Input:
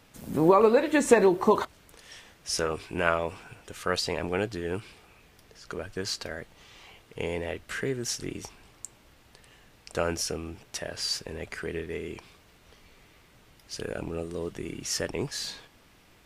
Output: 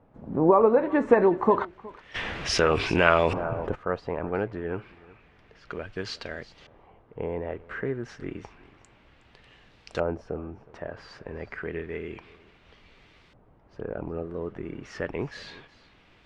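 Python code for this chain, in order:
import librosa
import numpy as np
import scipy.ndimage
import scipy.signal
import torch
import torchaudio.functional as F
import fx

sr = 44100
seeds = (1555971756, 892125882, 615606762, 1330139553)

y = x + 10.0 ** (-21.5 / 20.0) * np.pad(x, (int(367 * sr / 1000.0), 0))[:len(x)]
y = fx.filter_lfo_lowpass(y, sr, shape='saw_up', hz=0.3, low_hz=780.0, high_hz=4300.0, q=1.1)
y = fx.env_flatten(y, sr, amount_pct=50, at=(2.14, 3.74), fade=0.02)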